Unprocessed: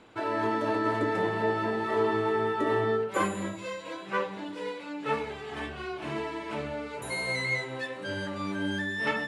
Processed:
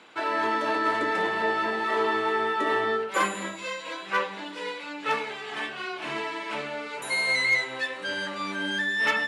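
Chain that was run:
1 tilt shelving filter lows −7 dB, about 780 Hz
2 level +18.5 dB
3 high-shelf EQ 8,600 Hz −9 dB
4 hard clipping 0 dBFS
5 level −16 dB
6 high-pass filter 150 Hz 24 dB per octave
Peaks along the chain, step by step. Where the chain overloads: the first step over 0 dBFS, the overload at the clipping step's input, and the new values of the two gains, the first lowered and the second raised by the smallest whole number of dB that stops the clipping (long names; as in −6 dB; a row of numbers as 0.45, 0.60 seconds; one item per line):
−13.0, +5.5, +5.0, 0.0, −16.0, −13.0 dBFS
step 2, 5.0 dB
step 2 +13.5 dB, step 5 −11 dB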